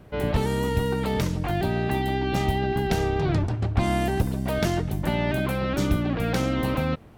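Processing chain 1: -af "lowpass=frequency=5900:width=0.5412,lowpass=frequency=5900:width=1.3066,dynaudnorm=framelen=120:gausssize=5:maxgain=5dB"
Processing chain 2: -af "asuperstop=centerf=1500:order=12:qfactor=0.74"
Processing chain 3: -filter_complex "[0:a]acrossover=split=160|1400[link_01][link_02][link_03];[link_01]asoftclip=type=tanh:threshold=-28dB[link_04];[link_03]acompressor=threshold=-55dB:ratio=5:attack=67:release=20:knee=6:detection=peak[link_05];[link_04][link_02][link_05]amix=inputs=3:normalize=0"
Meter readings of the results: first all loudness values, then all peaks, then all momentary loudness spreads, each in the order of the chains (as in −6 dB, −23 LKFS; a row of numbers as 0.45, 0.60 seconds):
−20.5, −26.0, −27.0 LKFS; −5.0, −10.5, −13.5 dBFS; 2, 2, 2 LU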